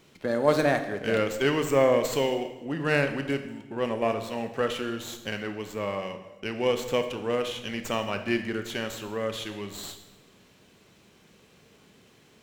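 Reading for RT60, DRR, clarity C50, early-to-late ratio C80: 1.0 s, 7.5 dB, 9.5 dB, 11.5 dB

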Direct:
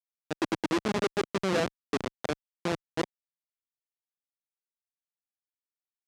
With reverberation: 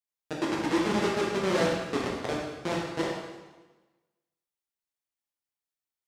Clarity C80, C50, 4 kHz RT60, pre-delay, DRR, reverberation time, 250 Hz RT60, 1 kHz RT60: 3.0 dB, 0.5 dB, 1.1 s, 5 ms, −4.0 dB, 1.2 s, 1.3 s, 1.2 s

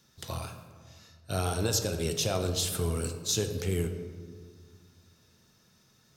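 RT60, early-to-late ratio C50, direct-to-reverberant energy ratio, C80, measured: 1.8 s, 8.0 dB, 6.0 dB, 10.0 dB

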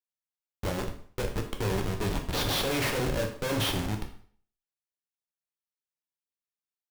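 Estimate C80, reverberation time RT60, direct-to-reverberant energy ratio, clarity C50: 12.5 dB, 0.50 s, 2.5 dB, 8.5 dB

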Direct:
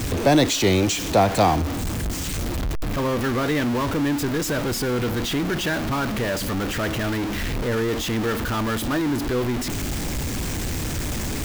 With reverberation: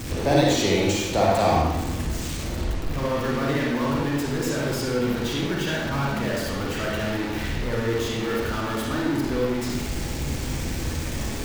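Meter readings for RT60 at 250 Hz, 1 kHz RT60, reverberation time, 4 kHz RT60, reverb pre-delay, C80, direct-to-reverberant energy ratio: 0.90 s, 0.95 s, 0.90 s, 0.75 s, 39 ms, 2.0 dB, −4.0 dB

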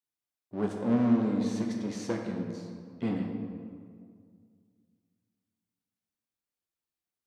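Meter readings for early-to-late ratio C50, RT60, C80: 3.0 dB, 2.1 s, 4.5 dB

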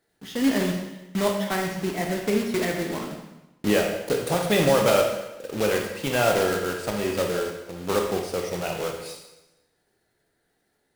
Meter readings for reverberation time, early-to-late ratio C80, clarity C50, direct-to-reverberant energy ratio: 1.0 s, 7.0 dB, 4.0 dB, 1.5 dB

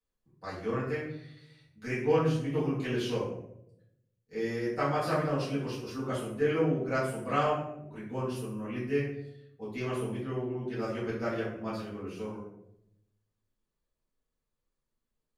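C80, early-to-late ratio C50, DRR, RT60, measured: 7.0 dB, 3.0 dB, −11.0 dB, 0.80 s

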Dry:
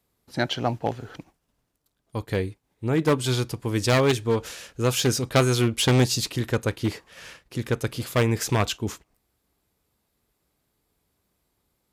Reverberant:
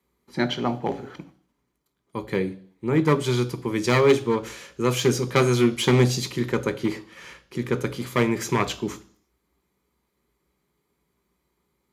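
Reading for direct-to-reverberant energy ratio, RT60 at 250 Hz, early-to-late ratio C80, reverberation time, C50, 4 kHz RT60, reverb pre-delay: 10.0 dB, 0.55 s, 21.0 dB, 0.55 s, 17.5 dB, 0.65 s, 3 ms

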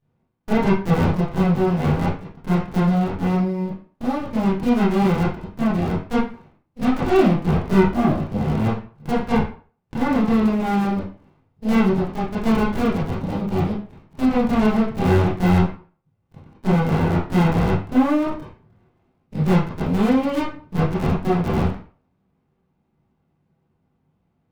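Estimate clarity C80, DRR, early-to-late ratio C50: 9.5 dB, −10.5 dB, 3.5 dB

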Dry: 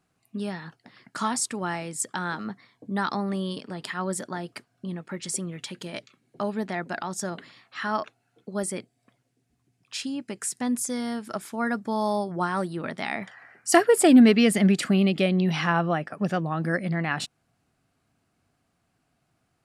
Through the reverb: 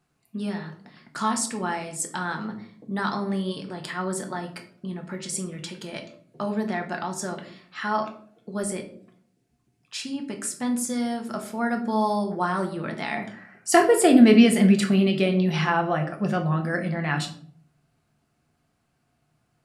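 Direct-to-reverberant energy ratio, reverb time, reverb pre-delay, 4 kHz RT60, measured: 3.0 dB, 0.55 s, 5 ms, 0.35 s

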